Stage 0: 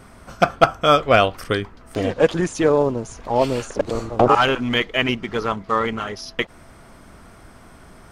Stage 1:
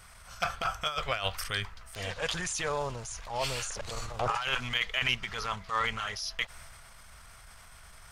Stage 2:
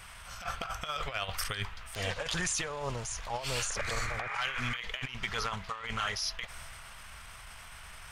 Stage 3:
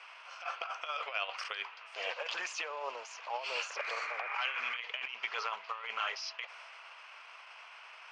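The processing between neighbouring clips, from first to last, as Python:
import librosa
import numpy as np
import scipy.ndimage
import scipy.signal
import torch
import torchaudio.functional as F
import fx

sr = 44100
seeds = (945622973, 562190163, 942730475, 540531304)

y1 = fx.tone_stack(x, sr, knobs='10-0-10')
y1 = fx.transient(y1, sr, attack_db=-7, sustain_db=4)
y1 = fx.over_compress(y1, sr, threshold_db=-28.0, ratio=-0.5)
y2 = fx.over_compress(y1, sr, threshold_db=-34.0, ratio=-0.5)
y2 = fx.spec_paint(y2, sr, seeds[0], shape='noise', start_s=3.76, length_s=1.01, low_hz=1100.0, high_hz=2500.0, level_db=-39.0)
y2 = fx.dmg_noise_band(y2, sr, seeds[1], low_hz=860.0, high_hz=3200.0, level_db=-54.0)
y3 = fx.cabinet(y2, sr, low_hz=480.0, low_slope=24, high_hz=4900.0, hz=(1000.0, 1800.0, 2600.0, 3700.0), db=(3, -4, 7, -8))
y3 = F.gain(torch.from_numpy(y3), -2.0).numpy()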